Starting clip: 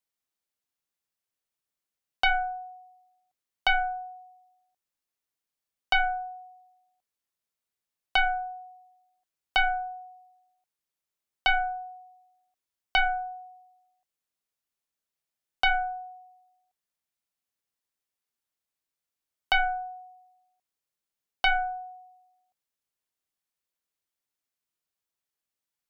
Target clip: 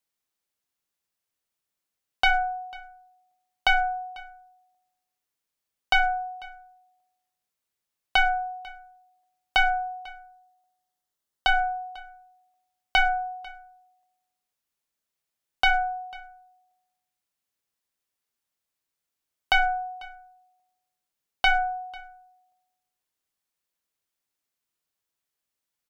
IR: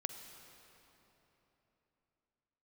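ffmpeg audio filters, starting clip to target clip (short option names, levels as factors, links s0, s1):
-filter_complex "[0:a]asettb=1/sr,asplit=3[s0][s1][s2];[s0]atrim=end=9.994[s3];[s1]atrim=start=9.99:end=11.59,asetpts=PTS-STARTPTS,afade=t=in:d=0.004:c=qsin,afade=t=out:st=1.596:d=0.004:c=qsin,equalizer=f=2400:t=o:w=0.2:g=-11.5[s4];[s2]atrim=start=11.586[s5];[s3][s4]acrossfade=d=0.004:c1=hsin:c2=qsin[s6];[s6][s5]acrossfade=d=0.004:c1=qsin:c2=hsin,asplit=2[s7][s8];[s8]aeval=exprs='clip(val(0),-1,0.0631)':c=same,volume=0.447[s9];[s7][s9]amix=inputs=2:normalize=0,aecho=1:1:495:0.0708"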